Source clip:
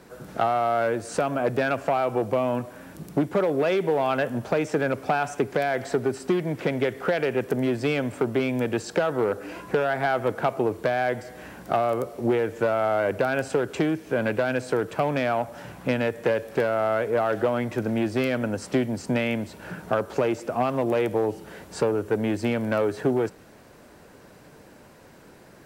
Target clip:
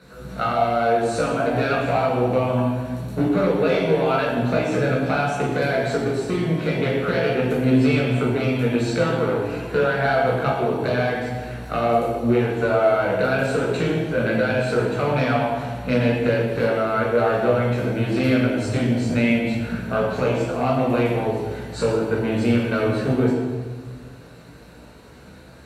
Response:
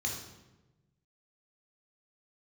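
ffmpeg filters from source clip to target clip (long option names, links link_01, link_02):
-filter_complex "[0:a]flanger=delay=15.5:depth=2.1:speed=0.39[link_01];[1:a]atrim=start_sample=2205,asetrate=27342,aresample=44100[link_02];[link_01][link_02]afir=irnorm=-1:irlink=0"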